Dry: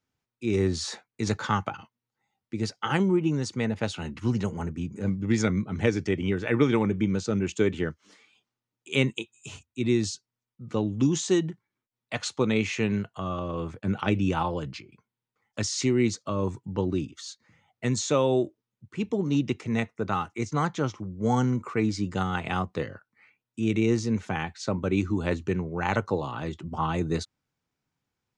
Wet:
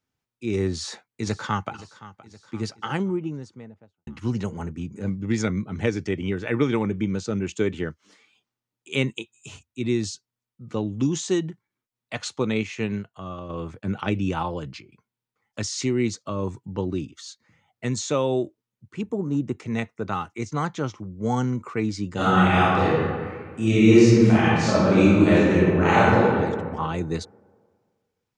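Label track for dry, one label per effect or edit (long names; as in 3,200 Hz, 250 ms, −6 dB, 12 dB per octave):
0.700000	1.740000	delay throw 520 ms, feedback 60%, level −17.5 dB
2.600000	4.070000	fade out and dull
12.630000	13.500000	expander for the loud parts, over −35 dBFS
19.010000	19.600000	flat-topped bell 3,500 Hz −14 dB
22.140000	26.190000	thrown reverb, RT60 1.8 s, DRR −10.5 dB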